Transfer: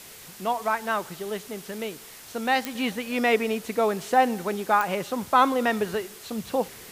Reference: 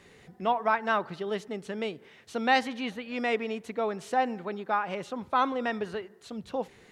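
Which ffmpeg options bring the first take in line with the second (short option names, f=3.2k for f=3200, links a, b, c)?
-af "adeclick=t=4,afwtdn=0.0063,asetnsamples=n=441:p=0,asendcmd='2.75 volume volume -6.5dB',volume=0dB"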